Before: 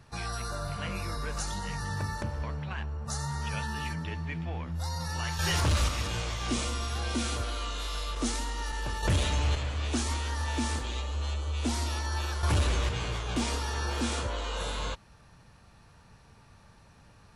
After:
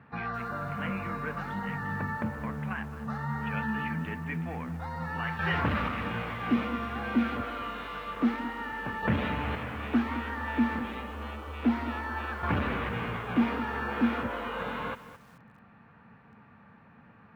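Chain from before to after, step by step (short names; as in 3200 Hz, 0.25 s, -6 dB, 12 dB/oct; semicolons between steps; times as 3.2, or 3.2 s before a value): speaker cabinet 170–2200 Hz, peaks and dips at 220 Hz +7 dB, 360 Hz -7 dB, 600 Hz -6 dB, 940 Hz -3 dB; lo-fi delay 0.216 s, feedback 35%, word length 9-bit, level -13.5 dB; gain +5 dB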